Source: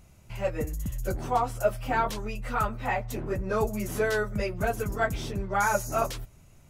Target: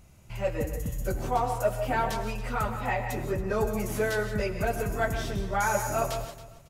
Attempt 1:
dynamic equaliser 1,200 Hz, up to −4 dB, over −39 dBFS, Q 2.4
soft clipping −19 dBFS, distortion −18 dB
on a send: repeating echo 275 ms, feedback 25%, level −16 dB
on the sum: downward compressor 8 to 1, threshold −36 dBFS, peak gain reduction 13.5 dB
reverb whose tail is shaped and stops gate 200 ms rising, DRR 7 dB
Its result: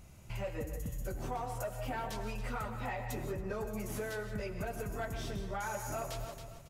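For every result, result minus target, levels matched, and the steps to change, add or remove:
downward compressor: peak gain reduction +13.5 dB; soft clipping: distortion +9 dB
remove: downward compressor 8 to 1, threshold −36 dBFS, peak gain reduction 13.5 dB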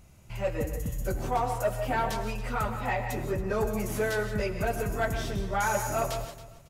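soft clipping: distortion +9 dB
change: soft clipping −13 dBFS, distortion −27 dB

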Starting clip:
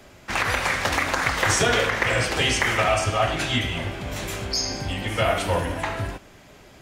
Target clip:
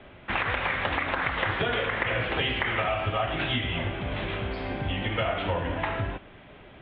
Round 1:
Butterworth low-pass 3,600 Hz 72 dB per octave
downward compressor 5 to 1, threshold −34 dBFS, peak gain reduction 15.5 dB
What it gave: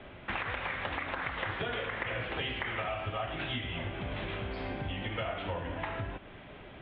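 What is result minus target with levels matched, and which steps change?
downward compressor: peak gain reduction +8 dB
change: downward compressor 5 to 1, threshold −24 dBFS, peak gain reduction 7.5 dB

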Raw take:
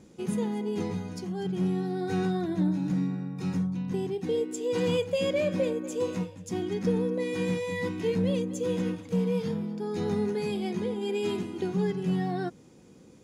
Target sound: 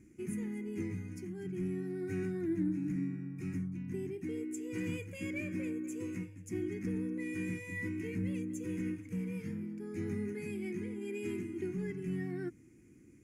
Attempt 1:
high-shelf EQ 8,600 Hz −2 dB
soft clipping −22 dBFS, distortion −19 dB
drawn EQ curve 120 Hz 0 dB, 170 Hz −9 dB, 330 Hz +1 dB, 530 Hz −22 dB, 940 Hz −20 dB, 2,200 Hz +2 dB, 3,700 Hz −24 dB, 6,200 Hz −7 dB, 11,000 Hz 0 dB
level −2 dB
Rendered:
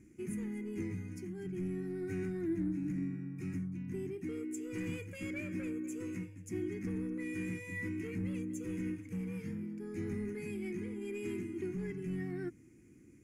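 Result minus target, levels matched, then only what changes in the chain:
soft clipping: distortion +12 dB
change: soft clipping −14.5 dBFS, distortion −31 dB

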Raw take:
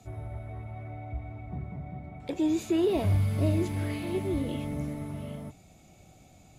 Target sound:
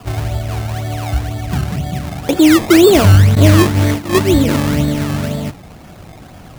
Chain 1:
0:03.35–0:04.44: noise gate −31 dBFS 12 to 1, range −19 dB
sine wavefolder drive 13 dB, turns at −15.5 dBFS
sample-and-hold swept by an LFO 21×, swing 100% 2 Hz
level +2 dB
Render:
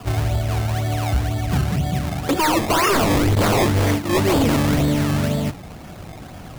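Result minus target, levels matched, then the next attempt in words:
sine wavefolder: distortion +27 dB
0:03.35–0:04.44: noise gate −31 dBFS 12 to 1, range −19 dB
sine wavefolder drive 13 dB, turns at −3.5 dBFS
sample-and-hold swept by an LFO 21×, swing 100% 2 Hz
level +2 dB

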